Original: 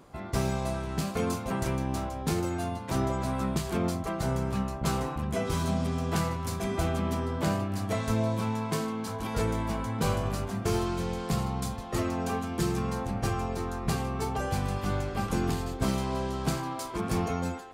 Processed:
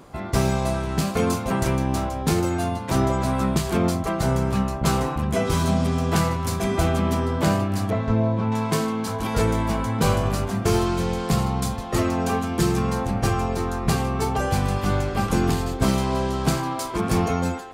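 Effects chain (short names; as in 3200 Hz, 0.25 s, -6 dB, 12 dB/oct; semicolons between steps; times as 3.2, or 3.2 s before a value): 7.9–8.52 tape spacing loss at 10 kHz 32 dB; gain +7.5 dB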